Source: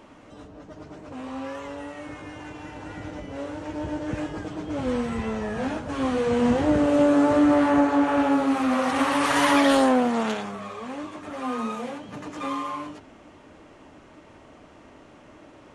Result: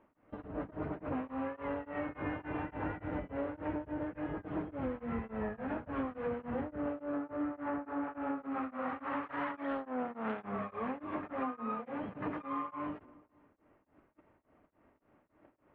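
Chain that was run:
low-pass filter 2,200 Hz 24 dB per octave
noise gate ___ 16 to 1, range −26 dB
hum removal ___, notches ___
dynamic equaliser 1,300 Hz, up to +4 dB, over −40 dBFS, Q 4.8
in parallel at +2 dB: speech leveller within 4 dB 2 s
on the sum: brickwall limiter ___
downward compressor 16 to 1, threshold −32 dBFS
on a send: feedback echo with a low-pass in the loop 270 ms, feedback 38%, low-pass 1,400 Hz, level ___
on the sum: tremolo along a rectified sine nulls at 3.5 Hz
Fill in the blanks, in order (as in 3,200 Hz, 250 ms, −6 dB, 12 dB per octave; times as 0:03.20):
−44 dBFS, 121.8 Hz, 4, −11 dBFS, −21 dB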